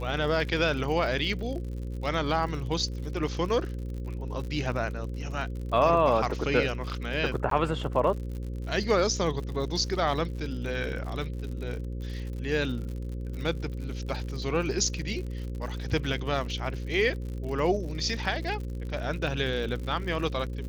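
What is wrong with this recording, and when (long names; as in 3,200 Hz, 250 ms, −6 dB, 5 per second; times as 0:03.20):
mains buzz 60 Hz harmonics 9 −34 dBFS
surface crackle 71 per second −36 dBFS
0:07.50–0:07.51: drop-out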